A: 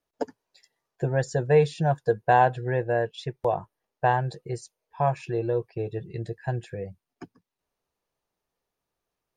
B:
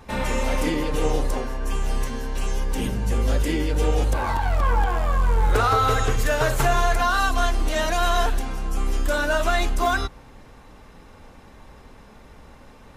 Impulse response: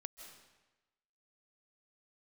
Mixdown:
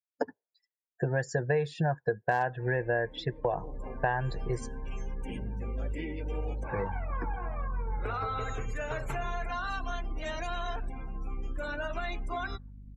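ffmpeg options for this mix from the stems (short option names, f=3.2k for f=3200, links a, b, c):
-filter_complex "[0:a]highpass=55,equalizer=f=1.7k:t=o:w=0.4:g=7.5,volume=1dB,asplit=3[a][b][c];[a]atrim=end=4.83,asetpts=PTS-STARTPTS,afade=t=out:st=4.826:d=0.004:c=hsin[d];[b]atrim=start=4.83:end=6.69,asetpts=PTS-STARTPTS,volume=0[e];[c]atrim=start=6.69,asetpts=PTS-STARTPTS,afade=t=in:d=0.004:c=hsin[f];[d][e][f]concat=n=3:v=0:a=1[g];[1:a]equalizer=f=2.3k:w=4.3:g=6,acompressor=threshold=-23dB:ratio=2,aeval=exprs='val(0)+0.0158*(sin(2*PI*50*n/s)+sin(2*PI*2*50*n/s)/2+sin(2*PI*3*50*n/s)/3+sin(2*PI*4*50*n/s)/4+sin(2*PI*5*50*n/s)/5)':c=same,adelay=2500,volume=-10dB,afade=t=in:st=3.31:d=0.74:silence=0.237137[h];[g][h]amix=inputs=2:normalize=0,afftdn=nr=32:nf=-44,asoftclip=type=hard:threshold=-6.5dB,acompressor=threshold=-25dB:ratio=6"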